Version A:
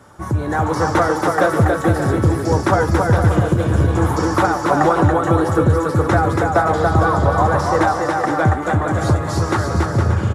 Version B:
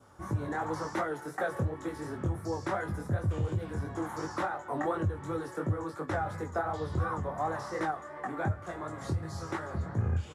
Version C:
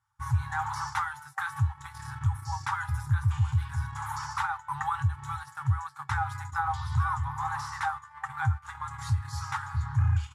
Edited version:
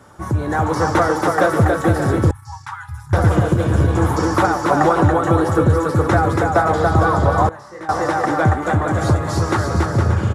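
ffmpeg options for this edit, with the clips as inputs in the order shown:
-filter_complex "[0:a]asplit=3[s0][s1][s2];[s0]atrim=end=2.312[s3];[2:a]atrim=start=2.308:end=3.132[s4];[s1]atrim=start=3.128:end=7.492[s5];[1:a]atrim=start=7.488:end=7.892[s6];[s2]atrim=start=7.888[s7];[s3][s4]acrossfade=d=0.004:c1=hsin:c2=hsin[s8];[s8][s5]acrossfade=d=0.004:c1=hsin:c2=hsin[s9];[s9][s6]acrossfade=d=0.004:c1=hsin:c2=hsin[s10];[s10][s7]acrossfade=d=0.004:c1=hsin:c2=hsin"

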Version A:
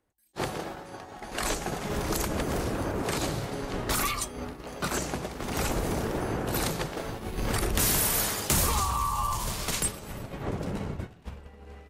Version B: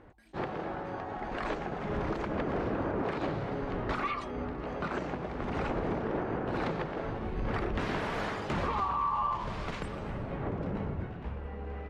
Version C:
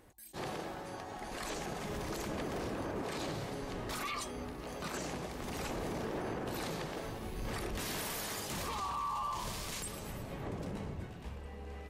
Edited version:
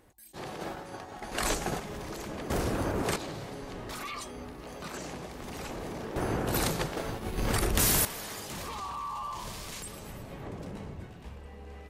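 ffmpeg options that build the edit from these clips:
-filter_complex "[0:a]asplit=3[s0][s1][s2];[2:a]asplit=4[s3][s4][s5][s6];[s3]atrim=end=0.612[s7];[s0]atrim=start=0.608:end=1.802[s8];[s4]atrim=start=1.798:end=2.502[s9];[s1]atrim=start=2.498:end=3.162[s10];[s5]atrim=start=3.158:end=6.162[s11];[s2]atrim=start=6.158:end=8.052[s12];[s6]atrim=start=8.048[s13];[s7][s8]acrossfade=d=0.004:c1=hsin:c2=hsin[s14];[s14][s9]acrossfade=d=0.004:c1=hsin:c2=hsin[s15];[s15][s10]acrossfade=d=0.004:c1=hsin:c2=hsin[s16];[s16][s11]acrossfade=d=0.004:c1=hsin:c2=hsin[s17];[s17][s12]acrossfade=d=0.004:c1=hsin:c2=hsin[s18];[s18][s13]acrossfade=d=0.004:c1=hsin:c2=hsin"

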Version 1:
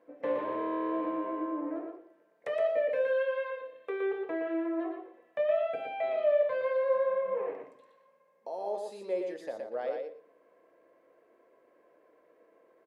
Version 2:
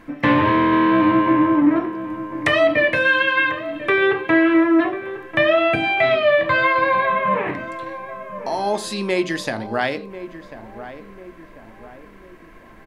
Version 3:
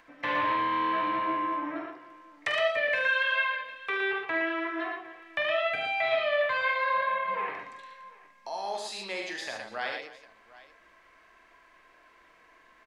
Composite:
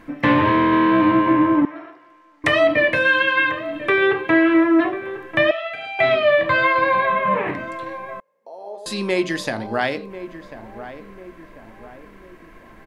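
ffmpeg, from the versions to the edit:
-filter_complex "[2:a]asplit=2[s0][s1];[1:a]asplit=4[s2][s3][s4][s5];[s2]atrim=end=1.652[s6];[s0]atrim=start=1.648:end=2.442[s7];[s3]atrim=start=2.438:end=5.512[s8];[s1]atrim=start=5.508:end=5.992[s9];[s4]atrim=start=5.988:end=8.202[s10];[0:a]atrim=start=8.198:end=8.862[s11];[s5]atrim=start=8.858[s12];[s6][s7]acrossfade=d=0.004:c1=hsin:c2=hsin[s13];[s13][s8]acrossfade=d=0.004:c1=hsin:c2=hsin[s14];[s14][s9]acrossfade=d=0.004:c1=hsin:c2=hsin[s15];[s15][s10]acrossfade=d=0.004:c1=hsin:c2=hsin[s16];[s16][s11]acrossfade=d=0.004:c1=hsin:c2=hsin[s17];[s17][s12]acrossfade=d=0.004:c1=hsin:c2=hsin"

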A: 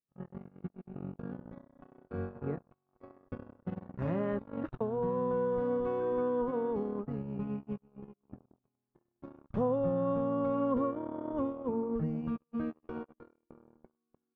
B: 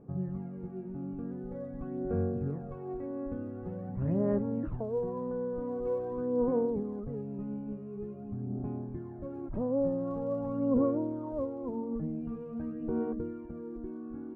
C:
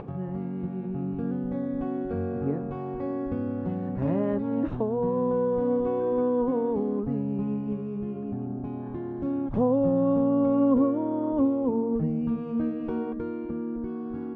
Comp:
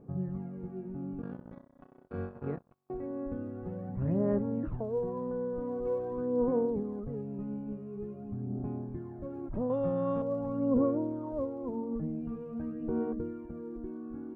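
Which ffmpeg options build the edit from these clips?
-filter_complex "[0:a]asplit=2[s0][s1];[1:a]asplit=3[s2][s3][s4];[s2]atrim=end=1.222[s5];[s0]atrim=start=1.218:end=2.902[s6];[s3]atrim=start=2.898:end=9.702[s7];[s1]atrim=start=9.698:end=10.222[s8];[s4]atrim=start=10.218[s9];[s5][s6]acrossfade=d=0.004:c1=hsin:c2=hsin[s10];[s10][s7]acrossfade=d=0.004:c1=hsin:c2=hsin[s11];[s11][s8]acrossfade=d=0.004:c1=hsin:c2=hsin[s12];[s12][s9]acrossfade=d=0.004:c1=hsin:c2=hsin"

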